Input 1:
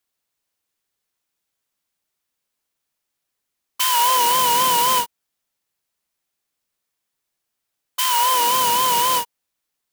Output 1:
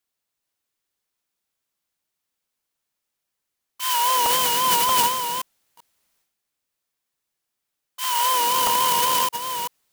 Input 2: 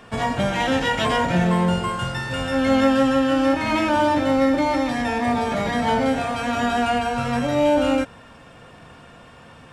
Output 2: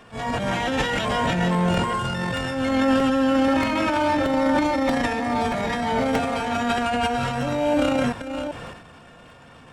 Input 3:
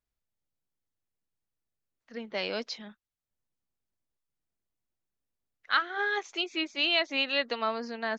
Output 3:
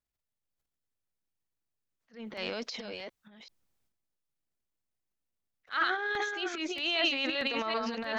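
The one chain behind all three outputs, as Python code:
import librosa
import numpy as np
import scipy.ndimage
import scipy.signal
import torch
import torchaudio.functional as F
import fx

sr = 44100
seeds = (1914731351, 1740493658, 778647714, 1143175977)

y = fx.reverse_delay(x, sr, ms=387, wet_db=-6)
y = fx.transient(y, sr, attack_db=-10, sustain_db=11)
y = fx.buffer_crackle(y, sr, first_s=0.48, period_s=0.63, block=64, kind='repeat')
y = y * 10.0 ** (-3.0 / 20.0)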